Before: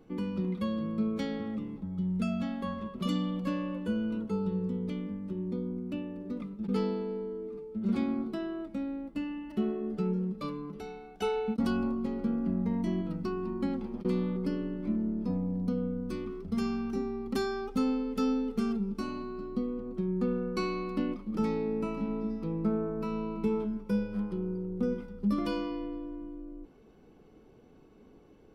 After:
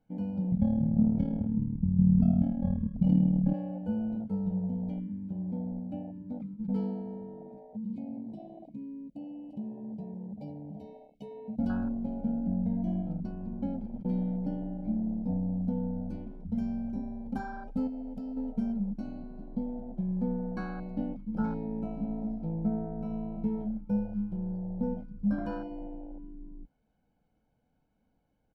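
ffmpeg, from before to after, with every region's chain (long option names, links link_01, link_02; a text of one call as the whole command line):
ffmpeg -i in.wav -filter_complex "[0:a]asettb=1/sr,asplit=3[link_01][link_02][link_03];[link_01]atrim=end=0.524[link_04];[link_02]atrim=start=0.52:end=3.54,asetpts=PTS-STARTPTS,afade=type=in:duration=0.004:curve=qsin,afade=type=out:start_time=3.016:duration=0.004:curve=qsin,bass=frequency=250:gain=15,treble=frequency=4000:gain=-6,tremolo=f=38:d=0.71[link_05];[link_03]atrim=start=3.536[link_06];[link_04][link_05]acrossfade=duration=0.004:curve1=hsin:curve2=qsin[link_07];[link_07][link_06]acrossfade=duration=0.004:curve1=qsin:curve2=hsin,asettb=1/sr,asplit=3[link_08][link_09][link_10];[link_08]atrim=end=7.734[link_11];[link_09]atrim=start=7.73:end=11.59,asetpts=PTS-STARTPTS,afade=type=in:duration=0.004:curve=qsin,afade=type=out:start_time=3.856:duration=0.004:curve=qsin,asuperstop=centerf=1200:order=12:qfactor=0.69,asplit=2[link_12][link_13];[link_13]adelay=14,volume=-4dB[link_14];[link_12][link_14]amix=inputs=2:normalize=0,atrim=end_sample=170226,acompressor=threshold=-36dB:ratio=3:attack=3.2:release=140:knee=1:detection=peak[link_15];[link_10]atrim=start=11.586[link_16];[link_11][link_15]acrossfade=duration=0.004:curve1=hsin:curve2=qsin[link_17];[link_17][link_16]acrossfade=duration=0.004:curve1=qsin:curve2=hsin,asettb=1/sr,asplit=3[link_18][link_19][link_20];[link_18]atrim=end=17.874[link_21];[link_19]atrim=start=17.87:end=18.37,asetpts=PTS-STARTPTS,afade=type=in:duration=0.004:curve=qsin,afade=type=out:start_time=0.496:duration=0.004:curve=qsin,equalizer=frequency=1000:width_type=o:width=1.6:gain=-8,acompressor=threshold=-33dB:ratio=4:attack=3.2:release=140:knee=1:detection=peak[link_22];[link_20]atrim=start=18.366[link_23];[link_21][link_22]acrossfade=duration=0.004:curve1=hsin:curve2=qsin[link_24];[link_24][link_23]acrossfade=duration=0.004:curve1=qsin:curve2=hsin,afwtdn=0.0224,highshelf=frequency=5300:gain=-5.5,aecho=1:1:1.3:0.86,volume=-1.5dB" out.wav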